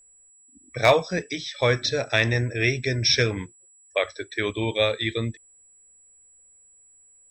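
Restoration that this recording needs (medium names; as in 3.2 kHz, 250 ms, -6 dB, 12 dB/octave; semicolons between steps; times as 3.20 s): clip repair -8 dBFS; band-stop 7.8 kHz, Q 30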